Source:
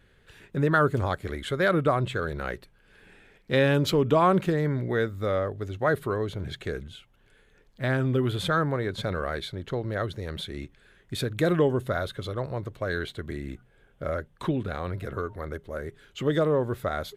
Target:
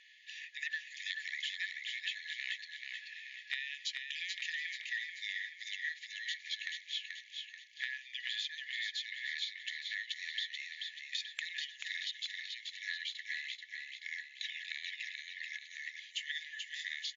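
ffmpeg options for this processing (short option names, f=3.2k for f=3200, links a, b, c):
-filter_complex "[0:a]afftfilt=real='re*between(b*sr/4096,1700,7200)':imag='im*between(b*sr/4096,1700,7200)':win_size=4096:overlap=0.75,acompressor=threshold=-44dB:ratio=20,asplit=2[a][b];[b]aecho=0:1:434|868|1302|1736|2170|2604:0.596|0.28|0.132|0.0618|0.0291|0.0137[c];[a][c]amix=inputs=2:normalize=0,volume=8dB"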